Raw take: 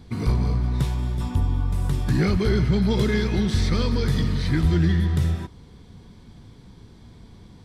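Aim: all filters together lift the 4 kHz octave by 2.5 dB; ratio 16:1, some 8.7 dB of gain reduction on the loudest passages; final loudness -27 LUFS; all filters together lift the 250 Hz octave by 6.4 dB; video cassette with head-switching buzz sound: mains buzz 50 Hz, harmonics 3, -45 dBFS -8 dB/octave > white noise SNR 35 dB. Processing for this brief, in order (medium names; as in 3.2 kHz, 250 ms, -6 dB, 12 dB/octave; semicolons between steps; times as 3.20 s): peaking EQ 250 Hz +9 dB; peaking EQ 4 kHz +3 dB; compression 16:1, threshold -21 dBFS; mains buzz 50 Hz, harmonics 3, -45 dBFS -8 dB/octave; white noise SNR 35 dB; trim -0.5 dB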